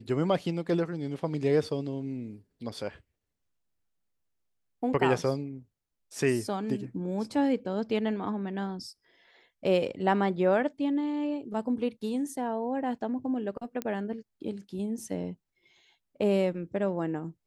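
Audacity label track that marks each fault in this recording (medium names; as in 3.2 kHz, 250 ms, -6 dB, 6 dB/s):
13.820000	13.820000	pop -18 dBFS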